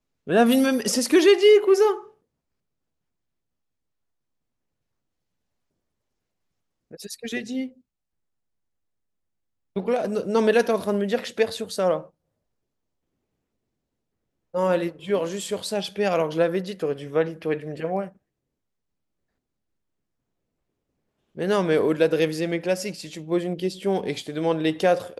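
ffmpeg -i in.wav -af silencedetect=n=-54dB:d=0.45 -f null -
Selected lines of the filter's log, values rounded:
silence_start: 2.14
silence_end: 6.91 | silence_duration: 4.77
silence_start: 7.81
silence_end: 9.76 | silence_duration: 1.95
silence_start: 12.10
silence_end: 14.54 | silence_duration: 2.44
silence_start: 18.17
silence_end: 21.35 | silence_duration: 3.18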